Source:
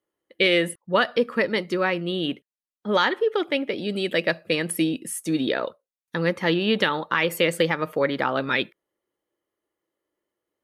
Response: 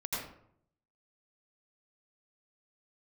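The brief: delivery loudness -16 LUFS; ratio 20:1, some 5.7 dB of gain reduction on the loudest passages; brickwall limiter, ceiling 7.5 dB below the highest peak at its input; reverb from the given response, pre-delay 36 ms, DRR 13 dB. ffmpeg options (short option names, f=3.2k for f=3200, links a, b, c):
-filter_complex "[0:a]acompressor=threshold=-21dB:ratio=20,alimiter=limit=-16.5dB:level=0:latency=1,asplit=2[a][b];[1:a]atrim=start_sample=2205,adelay=36[c];[b][c]afir=irnorm=-1:irlink=0,volume=-17dB[d];[a][d]amix=inputs=2:normalize=0,volume=12.5dB"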